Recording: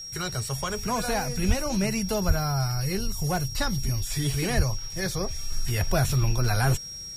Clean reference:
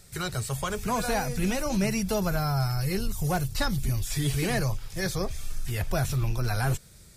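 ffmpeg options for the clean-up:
-filter_complex "[0:a]bandreject=f=5.6k:w=30,asplit=3[a][b][c];[a]afade=t=out:st=1.47:d=0.02[d];[b]highpass=f=140:w=0.5412,highpass=f=140:w=1.3066,afade=t=in:st=1.47:d=0.02,afade=t=out:st=1.59:d=0.02[e];[c]afade=t=in:st=1.59:d=0.02[f];[d][e][f]amix=inputs=3:normalize=0,asplit=3[g][h][i];[g]afade=t=out:st=2.27:d=0.02[j];[h]highpass=f=140:w=0.5412,highpass=f=140:w=1.3066,afade=t=in:st=2.27:d=0.02,afade=t=out:st=2.39:d=0.02[k];[i]afade=t=in:st=2.39:d=0.02[l];[j][k][l]amix=inputs=3:normalize=0,asplit=3[m][n][o];[m]afade=t=out:st=4.56:d=0.02[p];[n]highpass=f=140:w=0.5412,highpass=f=140:w=1.3066,afade=t=in:st=4.56:d=0.02,afade=t=out:st=4.68:d=0.02[q];[o]afade=t=in:st=4.68:d=0.02[r];[p][q][r]amix=inputs=3:normalize=0,asetnsamples=n=441:p=0,asendcmd='5.52 volume volume -3.5dB',volume=0dB"

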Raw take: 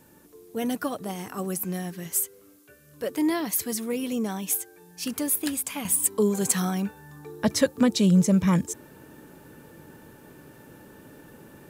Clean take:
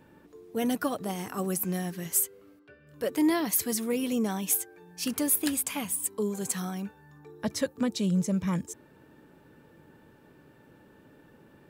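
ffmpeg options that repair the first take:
-af "agate=range=-21dB:threshold=-44dB,asetnsamples=n=441:p=0,asendcmd='5.85 volume volume -7.5dB',volume=0dB"

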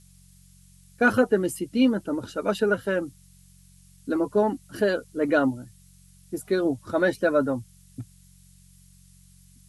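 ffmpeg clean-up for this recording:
-af "bandreject=f=45.7:t=h:w=4,bandreject=f=91.4:t=h:w=4,bandreject=f=137.1:t=h:w=4,bandreject=f=182.8:t=h:w=4,afftdn=nr=15:nf=-54"

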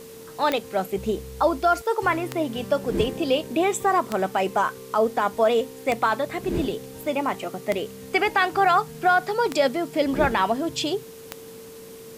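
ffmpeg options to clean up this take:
-af "adeclick=t=4,bandreject=f=450:w=30,afwtdn=0.004"

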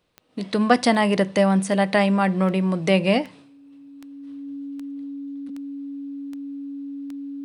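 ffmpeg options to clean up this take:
-af "adeclick=t=4,bandreject=f=280:w=30"

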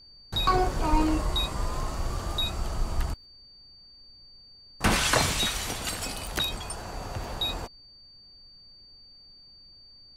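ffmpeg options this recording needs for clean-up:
-af "adeclick=t=4,bandreject=f=4.6k:w=30,agate=range=-21dB:threshold=-45dB"

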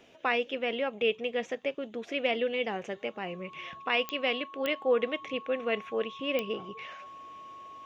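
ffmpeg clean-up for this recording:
-af "adeclick=t=4,bandreject=f=1.1k:w=30"

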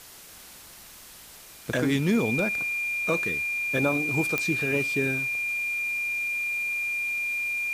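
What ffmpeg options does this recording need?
-af "adeclick=t=4,bandreject=f=2.4k:w=30,afwtdn=0.005"

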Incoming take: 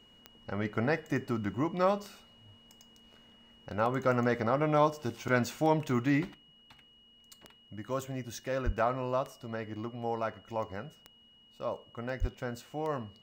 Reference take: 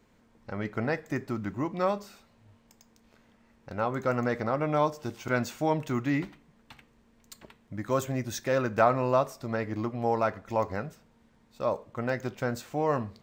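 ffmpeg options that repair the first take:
-filter_complex "[0:a]adeclick=t=4,bandreject=f=2.9k:w=30,asplit=3[a][b][c];[a]afade=t=out:st=8.65:d=0.02[d];[b]highpass=f=140:w=0.5412,highpass=f=140:w=1.3066,afade=t=in:st=8.65:d=0.02,afade=t=out:st=8.77:d=0.02[e];[c]afade=t=in:st=8.77:d=0.02[f];[d][e][f]amix=inputs=3:normalize=0,asplit=3[g][h][i];[g]afade=t=out:st=12.2:d=0.02[j];[h]highpass=f=140:w=0.5412,highpass=f=140:w=1.3066,afade=t=in:st=12.2:d=0.02,afade=t=out:st=12.32:d=0.02[k];[i]afade=t=in:st=12.32:d=0.02[l];[j][k][l]amix=inputs=3:normalize=0,asetnsamples=n=441:p=0,asendcmd='6.34 volume volume 7dB',volume=0dB"

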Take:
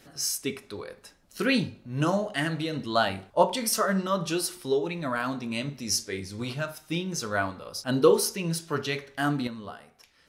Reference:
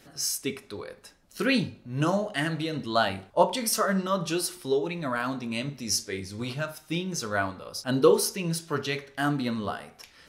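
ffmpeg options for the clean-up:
-af "asetnsamples=n=441:p=0,asendcmd='9.47 volume volume 8.5dB',volume=0dB"

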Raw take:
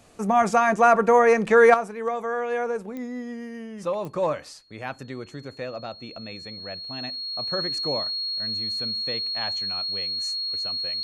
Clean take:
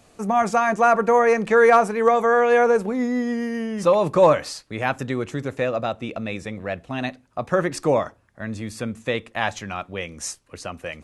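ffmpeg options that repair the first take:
-af "adeclick=t=4,bandreject=f=4.3k:w=30,asetnsamples=n=441:p=0,asendcmd='1.74 volume volume 10dB',volume=0dB"

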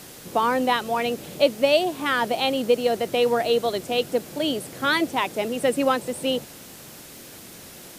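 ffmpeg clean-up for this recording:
-af "adeclick=t=4,afftdn=nr=25:nf=-43"

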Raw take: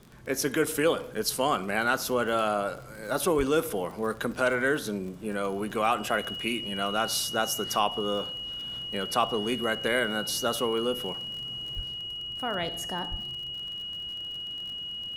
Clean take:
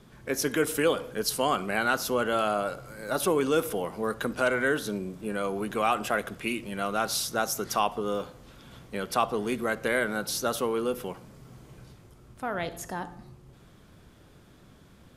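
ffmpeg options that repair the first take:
-filter_complex "[0:a]adeclick=t=4,bandreject=f=2.9k:w=30,asplit=3[a][b][c];[a]afade=t=out:st=3.37:d=0.02[d];[b]highpass=f=140:w=0.5412,highpass=f=140:w=1.3066,afade=t=in:st=3.37:d=0.02,afade=t=out:st=3.49:d=0.02[e];[c]afade=t=in:st=3.49:d=0.02[f];[d][e][f]amix=inputs=3:normalize=0,asplit=3[g][h][i];[g]afade=t=out:st=11.75:d=0.02[j];[h]highpass=f=140:w=0.5412,highpass=f=140:w=1.3066,afade=t=in:st=11.75:d=0.02,afade=t=out:st=11.87:d=0.02[k];[i]afade=t=in:st=11.87:d=0.02[l];[j][k][l]amix=inputs=3:normalize=0,asplit=3[m][n][o];[m]afade=t=out:st=13.1:d=0.02[p];[n]highpass=f=140:w=0.5412,highpass=f=140:w=1.3066,afade=t=in:st=13.1:d=0.02,afade=t=out:st=13.22:d=0.02[q];[o]afade=t=in:st=13.22:d=0.02[r];[p][q][r]amix=inputs=3:normalize=0"

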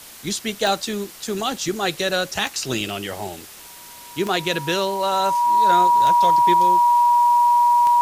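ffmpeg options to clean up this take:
-af "adeclick=t=4,bandreject=f=960:w=30,afwtdn=0.01"

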